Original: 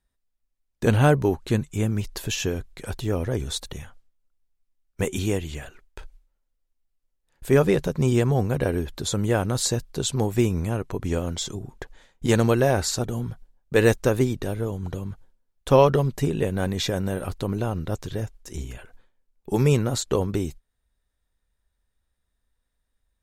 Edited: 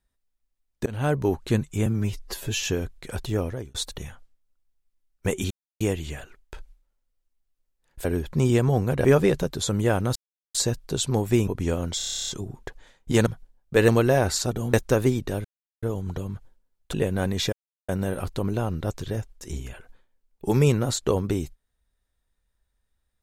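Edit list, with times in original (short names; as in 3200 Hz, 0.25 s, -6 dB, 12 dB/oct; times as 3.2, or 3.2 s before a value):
0.86–1.36 fade in, from -23.5 dB
1.86–2.37 stretch 1.5×
3.11–3.49 fade out
5.25 insert silence 0.30 s
7.49–7.95 swap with 8.67–8.95
9.6 insert silence 0.39 s
10.53–10.92 cut
11.42 stutter 0.03 s, 11 plays
13.26–13.88 move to 12.41
14.59 insert silence 0.38 s
15.7–16.34 cut
16.93 insert silence 0.36 s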